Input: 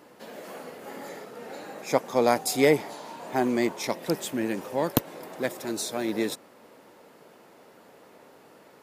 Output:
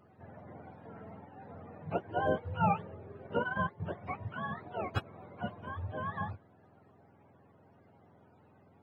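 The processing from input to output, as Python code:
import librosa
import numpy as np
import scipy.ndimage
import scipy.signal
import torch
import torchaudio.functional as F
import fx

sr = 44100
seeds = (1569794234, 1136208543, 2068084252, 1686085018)

y = fx.octave_mirror(x, sr, pivot_hz=610.0)
y = fx.transient(y, sr, attack_db=5, sustain_db=-9, at=(3.23, 3.8))
y = y * 10.0 ** (-7.5 / 20.0)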